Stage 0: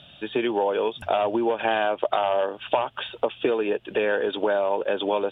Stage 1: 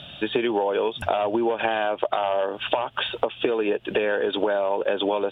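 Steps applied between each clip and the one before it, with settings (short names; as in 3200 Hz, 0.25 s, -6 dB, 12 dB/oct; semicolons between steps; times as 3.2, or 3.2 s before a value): compressor, threshold -28 dBFS, peak gain reduction 11.5 dB; gain +8 dB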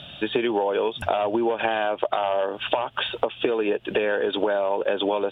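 nothing audible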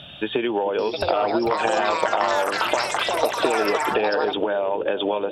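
analogue delay 0.433 s, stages 2048, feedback 68%, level -12 dB; echoes that change speed 0.787 s, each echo +7 st, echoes 3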